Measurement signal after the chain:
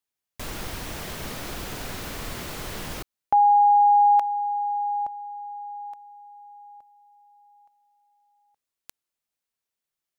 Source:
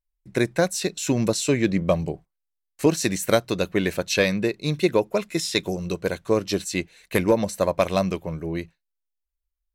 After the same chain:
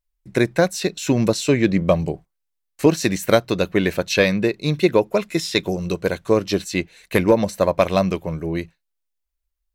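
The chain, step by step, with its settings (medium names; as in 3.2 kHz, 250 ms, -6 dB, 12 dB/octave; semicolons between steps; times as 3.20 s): dynamic bell 8.8 kHz, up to -7 dB, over -46 dBFS, Q 0.87; trim +4 dB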